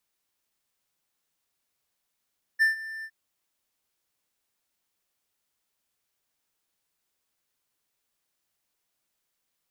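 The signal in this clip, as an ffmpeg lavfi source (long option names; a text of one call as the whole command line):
ffmpeg -f lavfi -i "aevalsrc='0.188*(1-4*abs(mod(1780*t+0.25,1)-0.5))':duration=0.511:sample_rate=44100,afade=type=in:duration=0.03,afade=type=out:start_time=0.03:duration=0.131:silence=0.126,afade=type=out:start_time=0.45:duration=0.061" out.wav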